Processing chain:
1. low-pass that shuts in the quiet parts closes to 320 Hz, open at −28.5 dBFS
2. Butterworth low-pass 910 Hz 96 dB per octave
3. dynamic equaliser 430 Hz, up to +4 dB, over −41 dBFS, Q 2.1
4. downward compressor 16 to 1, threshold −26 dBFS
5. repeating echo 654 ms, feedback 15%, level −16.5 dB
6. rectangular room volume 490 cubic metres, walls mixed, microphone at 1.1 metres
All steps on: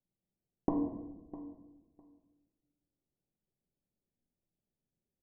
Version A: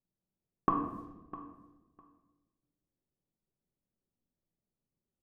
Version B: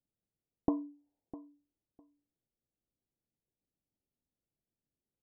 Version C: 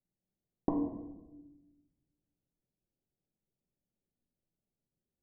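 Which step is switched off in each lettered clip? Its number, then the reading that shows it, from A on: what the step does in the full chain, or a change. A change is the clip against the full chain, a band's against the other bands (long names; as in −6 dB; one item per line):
2, 1 kHz band +14.0 dB
6, 125 Hz band −2.0 dB
5, change in momentary loudness spread +4 LU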